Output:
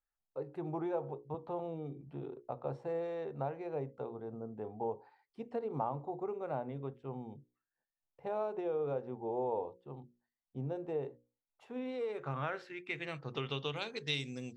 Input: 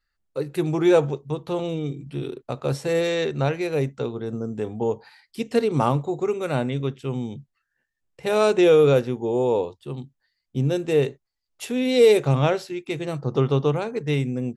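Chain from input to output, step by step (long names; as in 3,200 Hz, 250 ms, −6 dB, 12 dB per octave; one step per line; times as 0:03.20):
first-order pre-emphasis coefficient 0.9
mains-hum notches 60/120/180/240/300/360/420/480/540 Hz
downward compressor 10 to 1, threshold −37 dBFS, peak gain reduction 10.5 dB
low-pass filter sweep 820 Hz → 4,700 Hz, 0:11.48–0:14.33
0:01.34–0:02.42: multiband upward and downward compressor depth 40%
level +3.5 dB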